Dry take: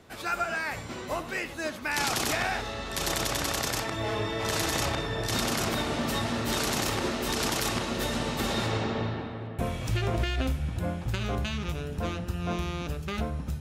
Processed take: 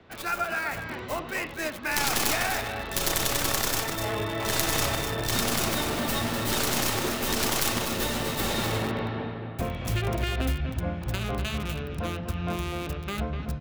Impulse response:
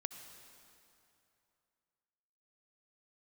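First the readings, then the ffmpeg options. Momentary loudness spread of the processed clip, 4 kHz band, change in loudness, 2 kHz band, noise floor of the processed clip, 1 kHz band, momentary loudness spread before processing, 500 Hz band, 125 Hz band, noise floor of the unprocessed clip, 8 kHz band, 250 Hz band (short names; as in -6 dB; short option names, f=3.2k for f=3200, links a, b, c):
8 LU, +2.0 dB, +2.0 dB, +2.0 dB, -37 dBFS, +1.0 dB, 6 LU, +1.0 dB, +0.5 dB, -39 dBFS, +4.0 dB, +0.5 dB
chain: -filter_complex "[0:a]aemphasis=mode=production:type=50kf,aecho=1:1:249:0.398,acrossover=split=150|570|3700[a][b][c][d];[d]acrusher=bits=3:dc=4:mix=0:aa=0.000001[e];[a][b][c][e]amix=inputs=4:normalize=0"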